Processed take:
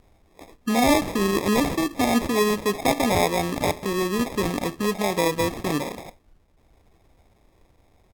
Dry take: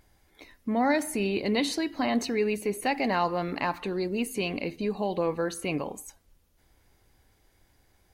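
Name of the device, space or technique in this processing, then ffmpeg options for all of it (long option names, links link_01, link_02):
crushed at another speed: -af "asetrate=55125,aresample=44100,acrusher=samples=24:mix=1:aa=0.000001,asetrate=35280,aresample=44100,volume=5.5dB"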